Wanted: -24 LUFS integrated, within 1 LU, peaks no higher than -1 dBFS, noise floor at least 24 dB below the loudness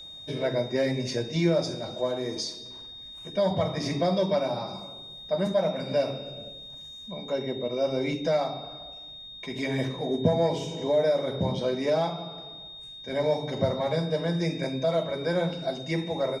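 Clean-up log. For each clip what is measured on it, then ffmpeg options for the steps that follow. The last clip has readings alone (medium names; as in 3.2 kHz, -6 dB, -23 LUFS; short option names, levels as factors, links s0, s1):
steady tone 3.7 kHz; tone level -41 dBFS; loudness -28.0 LUFS; peak level -11.5 dBFS; loudness target -24.0 LUFS
-> -af "bandreject=f=3700:w=30"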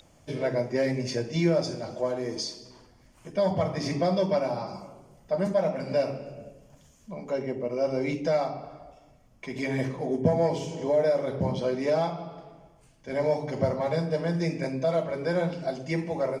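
steady tone not found; loudness -28.0 LUFS; peak level -11.5 dBFS; loudness target -24.0 LUFS
-> -af "volume=1.58"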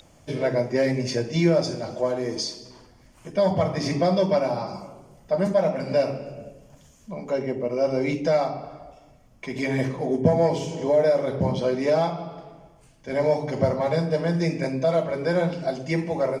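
loudness -24.5 LUFS; peak level -7.5 dBFS; noise floor -54 dBFS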